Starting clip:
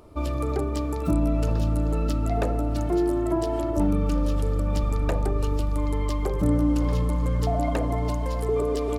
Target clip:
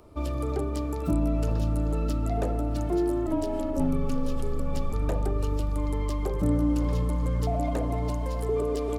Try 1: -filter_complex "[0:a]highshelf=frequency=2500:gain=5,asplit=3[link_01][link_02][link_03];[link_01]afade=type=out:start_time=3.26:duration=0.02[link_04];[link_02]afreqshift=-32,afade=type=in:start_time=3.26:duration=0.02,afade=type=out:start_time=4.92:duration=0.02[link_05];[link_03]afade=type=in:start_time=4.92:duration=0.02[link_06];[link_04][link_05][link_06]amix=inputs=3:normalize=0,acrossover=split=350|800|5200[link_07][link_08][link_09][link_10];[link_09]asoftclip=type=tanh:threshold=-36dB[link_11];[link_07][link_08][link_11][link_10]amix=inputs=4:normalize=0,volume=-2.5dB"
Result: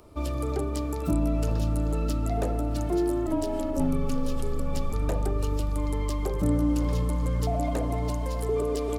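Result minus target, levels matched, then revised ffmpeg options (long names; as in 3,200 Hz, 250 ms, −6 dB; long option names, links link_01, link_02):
4,000 Hz band +3.0 dB
-filter_complex "[0:a]asplit=3[link_01][link_02][link_03];[link_01]afade=type=out:start_time=3.26:duration=0.02[link_04];[link_02]afreqshift=-32,afade=type=in:start_time=3.26:duration=0.02,afade=type=out:start_time=4.92:duration=0.02[link_05];[link_03]afade=type=in:start_time=4.92:duration=0.02[link_06];[link_04][link_05][link_06]amix=inputs=3:normalize=0,acrossover=split=350|800|5200[link_07][link_08][link_09][link_10];[link_09]asoftclip=type=tanh:threshold=-36dB[link_11];[link_07][link_08][link_11][link_10]amix=inputs=4:normalize=0,volume=-2.5dB"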